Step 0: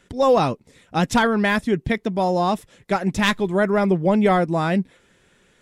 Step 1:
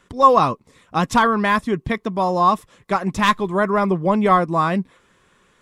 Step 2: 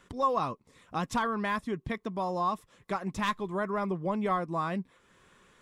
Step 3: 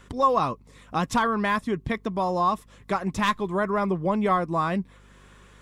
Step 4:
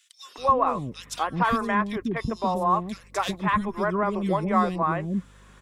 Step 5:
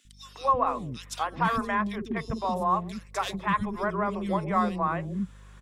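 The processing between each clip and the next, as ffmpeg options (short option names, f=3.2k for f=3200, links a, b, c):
-af "equalizer=f=1.1k:w=4.4:g=14.5,volume=-1dB"
-af "acompressor=threshold=-43dB:ratio=1.5,volume=-3dB"
-af "aeval=exprs='val(0)+0.00112*(sin(2*PI*50*n/s)+sin(2*PI*2*50*n/s)/2+sin(2*PI*3*50*n/s)/3+sin(2*PI*4*50*n/s)/4+sin(2*PI*5*50*n/s)/5)':c=same,volume=6.5dB"
-filter_complex "[0:a]acrossover=split=400|2600[a][b][c];[b]adelay=250[d];[a]adelay=380[e];[e][d][c]amix=inputs=3:normalize=0,volume=1dB"
-filter_complex "[0:a]aeval=exprs='val(0)+0.00316*(sin(2*PI*50*n/s)+sin(2*PI*2*50*n/s)/2+sin(2*PI*3*50*n/s)/3+sin(2*PI*4*50*n/s)/4+sin(2*PI*5*50*n/s)/5)':c=same,acrossover=split=360[a][b];[a]adelay=50[c];[c][b]amix=inputs=2:normalize=0,volume=-2.5dB"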